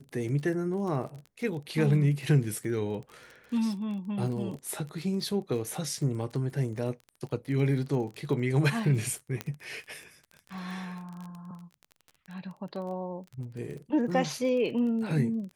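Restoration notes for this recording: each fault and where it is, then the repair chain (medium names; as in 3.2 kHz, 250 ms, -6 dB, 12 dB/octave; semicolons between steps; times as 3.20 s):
crackle 27 per s -37 dBFS
9.41 s: pop -17 dBFS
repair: de-click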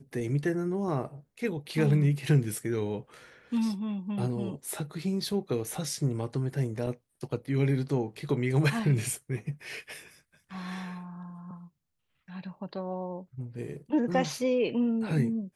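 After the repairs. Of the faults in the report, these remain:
nothing left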